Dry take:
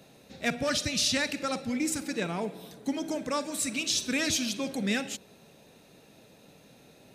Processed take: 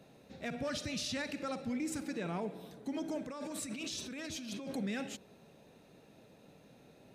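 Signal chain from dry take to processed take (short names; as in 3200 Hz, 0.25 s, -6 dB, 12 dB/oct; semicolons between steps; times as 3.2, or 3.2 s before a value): high shelf 2600 Hz -8.5 dB; limiter -26.5 dBFS, peak gain reduction 9 dB; 3.26–4.76 negative-ratio compressor -39 dBFS, ratio -1; gain -3 dB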